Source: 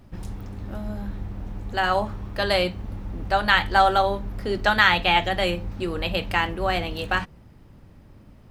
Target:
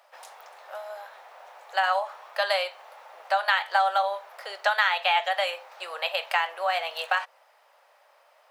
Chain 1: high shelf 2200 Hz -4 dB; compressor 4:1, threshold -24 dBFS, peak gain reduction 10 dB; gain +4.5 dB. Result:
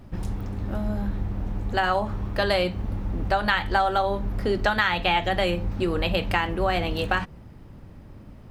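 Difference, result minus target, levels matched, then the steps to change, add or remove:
500 Hz band +4.0 dB
add after compressor: steep high-pass 580 Hz 48 dB/oct

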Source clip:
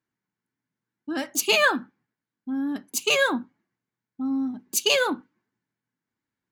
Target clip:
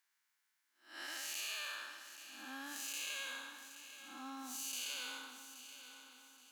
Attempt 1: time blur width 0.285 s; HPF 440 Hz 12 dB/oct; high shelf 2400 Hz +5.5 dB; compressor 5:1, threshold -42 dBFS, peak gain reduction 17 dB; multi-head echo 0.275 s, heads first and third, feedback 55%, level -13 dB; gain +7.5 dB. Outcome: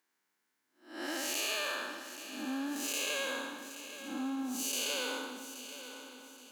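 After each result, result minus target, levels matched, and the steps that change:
500 Hz band +11.5 dB; compressor: peak gain reduction -7 dB
change: HPF 1300 Hz 12 dB/oct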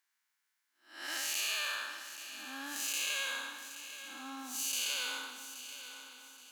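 compressor: peak gain reduction -7.5 dB
change: compressor 5:1, threshold -51.5 dBFS, peak gain reduction 24 dB

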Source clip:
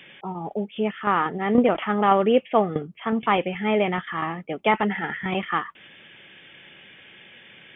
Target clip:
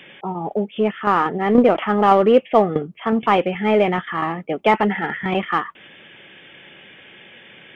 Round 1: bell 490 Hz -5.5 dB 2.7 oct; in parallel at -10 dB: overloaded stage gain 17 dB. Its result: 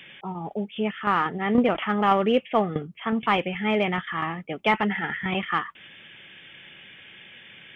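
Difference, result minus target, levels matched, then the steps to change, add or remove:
500 Hz band -2.5 dB
change: bell 490 Hz +4.5 dB 2.7 oct

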